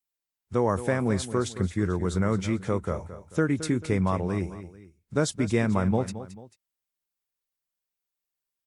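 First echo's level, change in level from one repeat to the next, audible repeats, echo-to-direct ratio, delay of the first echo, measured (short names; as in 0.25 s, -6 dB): -13.0 dB, -7.5 dB, 2, -12.5 dB, 0.22 s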